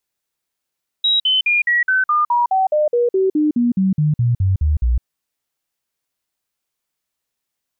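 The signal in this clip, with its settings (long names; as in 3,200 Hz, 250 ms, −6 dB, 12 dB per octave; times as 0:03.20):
stepped sweep 3,840 Hz down, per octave 3, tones 19, 0.16 s, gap 0.05 s −12.5 dBFS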